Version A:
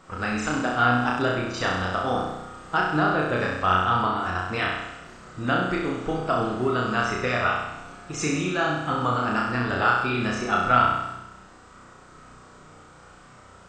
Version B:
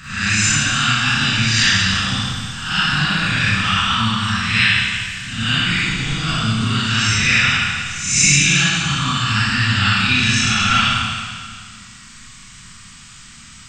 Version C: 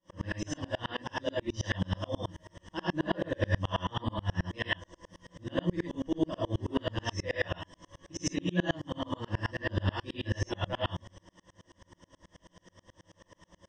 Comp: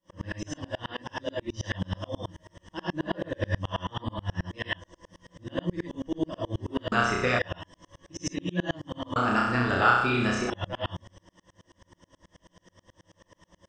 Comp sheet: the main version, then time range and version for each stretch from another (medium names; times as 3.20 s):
C
6.92–7.39 s: from A
9.16–10.50 s: from A
not used: B